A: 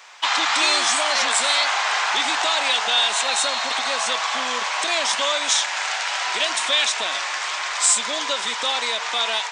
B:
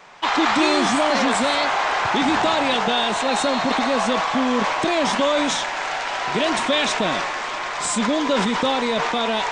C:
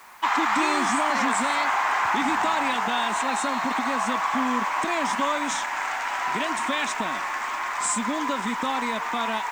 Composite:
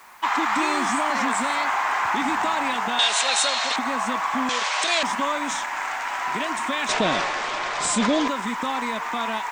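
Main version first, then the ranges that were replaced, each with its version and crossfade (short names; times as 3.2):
C
2.99–3.76 from A
4.49–5.03 from A
6.89–8.28 from B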